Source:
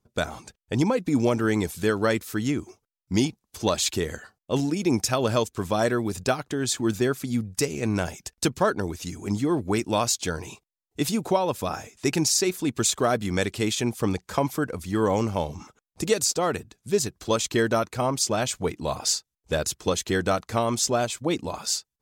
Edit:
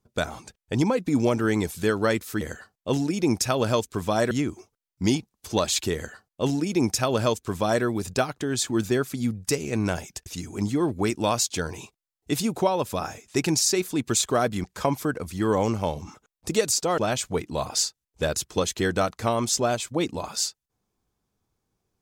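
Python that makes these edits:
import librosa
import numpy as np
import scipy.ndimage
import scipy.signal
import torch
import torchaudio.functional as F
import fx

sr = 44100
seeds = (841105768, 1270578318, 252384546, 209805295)

y = fx.edit(x, sr, fx.duplicate(start_s=4.04, length_s=1.9, to_s=2.41),
    fx.cut(start_s=8.36, length_s=0.59),
    fx.cut(start_s=13.33, length_s=0.84),
    fx.cut(start_s=16.51, length_s=1.77), tone=tone)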